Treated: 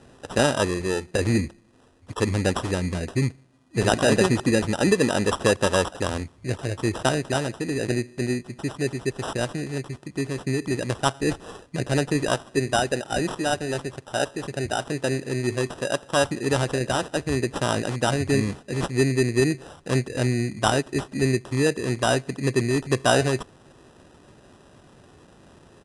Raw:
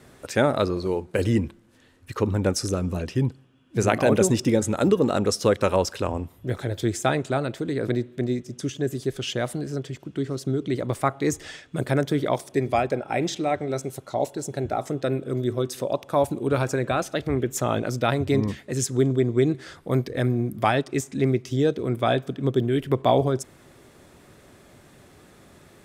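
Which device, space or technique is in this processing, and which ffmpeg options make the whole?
crushed at another speed: -af "asetrate=88200,aresample=44100,acrusher=samples=10:mix=1:aa=0.000001,asetrate=22050,aresample=44100"

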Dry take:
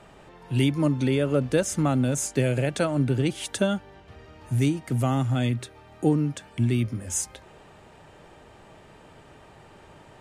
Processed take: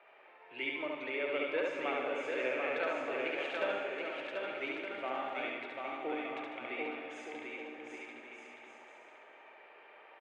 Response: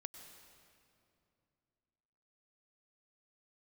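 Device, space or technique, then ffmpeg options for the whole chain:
station announcement: -filter_complex "[0:a]highpass=360,lowpass=4.5k,acrossover=split=350 3200:gain=0.0708 1 0.0891[a][b][c];[a][b][c]amix=inputs=3:normalize=0,equalizer=f=2.3k:t=o:w=0.47:g=10.5,aecho=1:1:69.97|148.7:0.794|0.316[d];[1:a]atrim=start_sample=2205[e];[d][e]afir=irnorm=-1:irlink=0,aecho=1:1:740|1221|1534|1737|1869:0.631|0.398|0.251|0.158|0.1,volume=-4.5dB"

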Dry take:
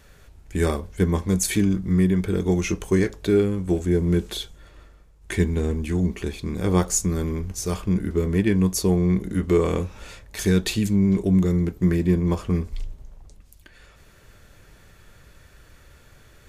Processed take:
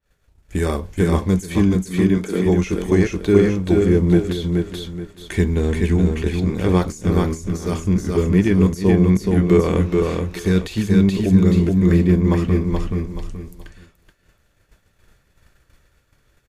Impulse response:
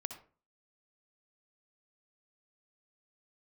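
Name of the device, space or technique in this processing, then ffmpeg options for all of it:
de-esser from a sidechain: -filter_complex "[0:a]asettb=1/sr,asplit=3[a][b][c];[a]atrim=end=1.754[d];[b]atrim=start=1.75:end=2.46,asetpts=PTS-STARTPTS,afade=t=in:d=0.004:c=qsin,afade=t=out:st=0.706:d=0.004:c=qsin,highpass=f=200:w=0.5412,highpass=f=200:w=1.3066[e];[c]atrim=start=2.456[f];[d][e]acrossfade=d=0.004:c1=hsin:c2=qsin[g];[g][f]acrossfade=d=0.004:c1=qsin:c2=hsin,aecho=1:1:427|854|1281|1708:0.631|0.196|0.0606|0.0188,agate=range=-33dB:threshold=-37dB:ratio=3:detection=peak,asplit=2[h][i];[i]highpass=4.1k,apad=whole_len=802125[j];[h][j]sidechaincompress=threshold=-37dB:ratio=6:attack=2.3:release=60,adynamicequalizer=threshold=0.00251:dfrequency=5800:dqfactor=0.7:tfrequency=5800:tqfactor=0.7:attack=5:release=100:ratio=0.375:range=3:mode=cutabove:tftype=highshelf,volume=4.5dB"

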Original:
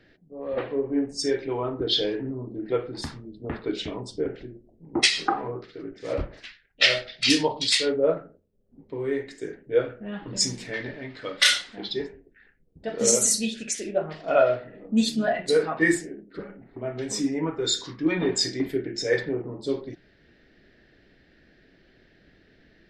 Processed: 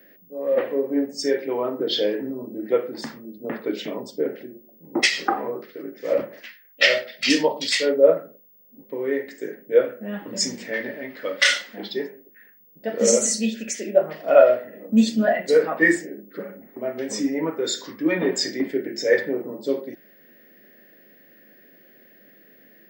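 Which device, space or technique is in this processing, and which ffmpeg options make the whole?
old television with a line whistle: -af "highpass=f=180:w=0.5412,highpass=f=180:w=1.3066,equalizer=f=220:t=q:w=4:g=5,equalizer=f=550:t=q:w=4:g=9,equalizer=f=1.9k:t=q:w=4:g=5,equalizer=f=3.9k:t=q:w=4:g=-6,lowpass=f=7.9k:w=0.5412,lowpass=f=7.9k:w=1.3066,aeval=exprs='val(0)+0.00224*sin(2*PI*15625*n/s)':c=same,volume=1dB"

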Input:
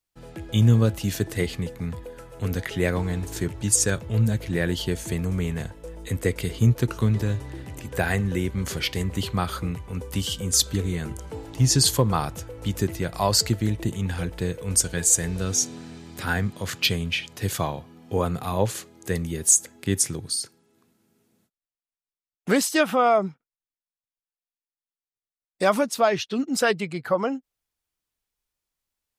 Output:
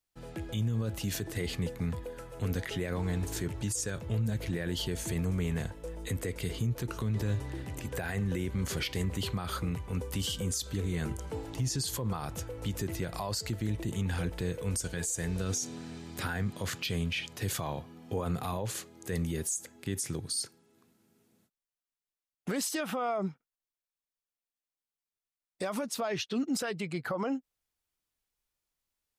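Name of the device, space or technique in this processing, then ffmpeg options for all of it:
stacked limiters: -af "alimiter=limit=-11dB:level=0:latency=1:release=426,alimiter=limit=-17.5dB:level=0:latency=1:release=67,alimiter=limit=-22dB:level=0:latency=1:release=36,volume=-2dB"

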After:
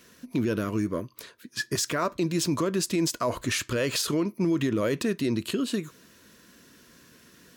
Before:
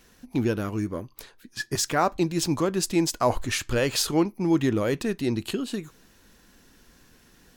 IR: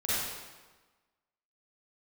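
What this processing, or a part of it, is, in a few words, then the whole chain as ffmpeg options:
PA system with an anti-feedback notch: -af "highpass=110,asuperstop=centerf=800:order=4:qfactor=3.9,alimiter=limit=-20.5dB:level=0:latency=1:release=59,volume=3dB"

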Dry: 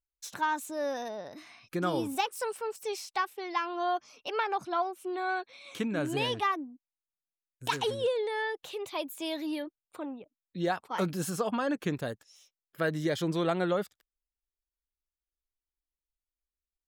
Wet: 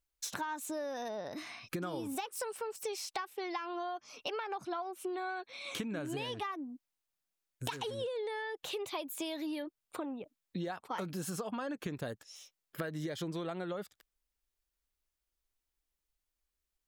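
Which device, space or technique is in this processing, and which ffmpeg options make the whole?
serial compression, leveller first: -af "acompressor=threshold=-31dB:ratio=2.5,acompressor=threshold=-42dB:ratio=6,volume=6dB"

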